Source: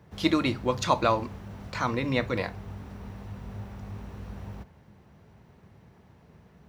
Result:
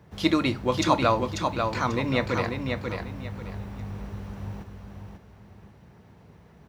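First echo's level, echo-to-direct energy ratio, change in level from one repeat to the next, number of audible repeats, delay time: −5.0 dB, −4.5 dB, −11.0 dB, 3, 541 ms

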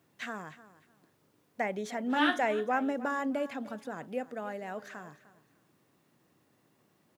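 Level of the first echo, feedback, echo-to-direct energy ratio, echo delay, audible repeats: −17.0 dB, 22%, −17.0 dB, 302 ms, 2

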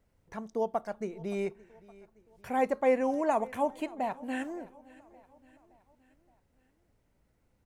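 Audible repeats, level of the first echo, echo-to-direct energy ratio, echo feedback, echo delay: 3, −22.0 dB, −20.5 dB, 52%, 569 ms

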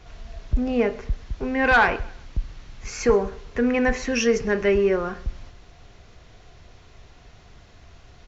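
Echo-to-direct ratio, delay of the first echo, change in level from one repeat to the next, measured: −21.5 dB, 130 ms, −9.0 dB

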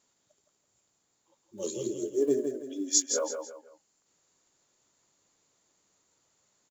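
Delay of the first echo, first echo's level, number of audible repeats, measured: 165 ms, −6.5 dB, 3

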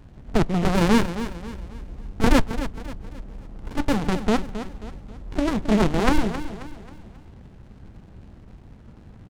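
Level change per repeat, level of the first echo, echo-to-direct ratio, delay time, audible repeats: −7.5 dB, −11.5 dB, −10.5 dB, 268 ms, 4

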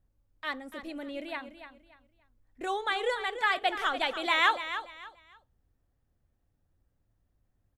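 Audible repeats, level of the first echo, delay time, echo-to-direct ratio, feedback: 3, −11.0 dB, 290 ms, −10.5 dB, 27%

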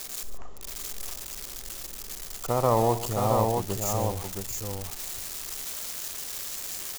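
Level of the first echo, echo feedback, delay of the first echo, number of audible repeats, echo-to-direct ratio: −14.5 dB, repeats not evenly spaced, 59 ms, 3, −3.5 dB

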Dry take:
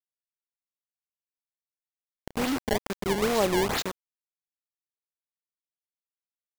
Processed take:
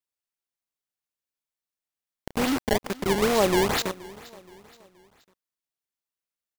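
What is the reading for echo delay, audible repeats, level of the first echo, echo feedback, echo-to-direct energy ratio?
474 ms, 2, −21.0 dB, 43%, −20.0 dB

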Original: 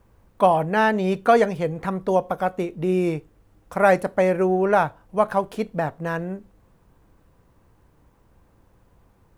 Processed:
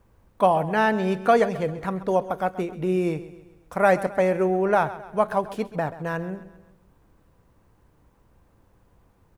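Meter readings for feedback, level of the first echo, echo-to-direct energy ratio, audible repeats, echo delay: 47%, −15.5 dB, −14.5 dB, 3, 133 ms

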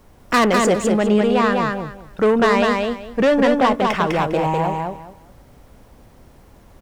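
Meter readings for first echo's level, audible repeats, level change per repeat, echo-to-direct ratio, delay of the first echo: −3.0 dB, 3, −13.5 dB, −3.0 dB, 202 ms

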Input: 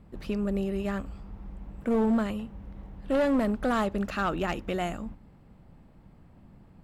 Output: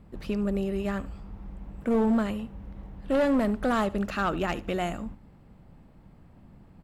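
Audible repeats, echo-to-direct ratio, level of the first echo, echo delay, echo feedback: 2, −19.5 dB, −20.0 dB, 74 ms, 25%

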